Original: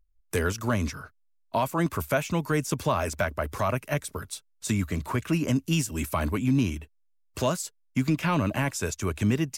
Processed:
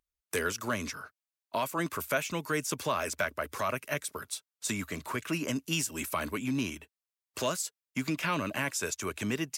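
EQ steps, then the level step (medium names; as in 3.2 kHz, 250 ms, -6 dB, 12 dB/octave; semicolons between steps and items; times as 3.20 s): high-pass 540 Hz 6 dB/octave; dynamic bell 810 Hz, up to -6 dB, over -43 dBFS, Q 1.9; 0.0 dB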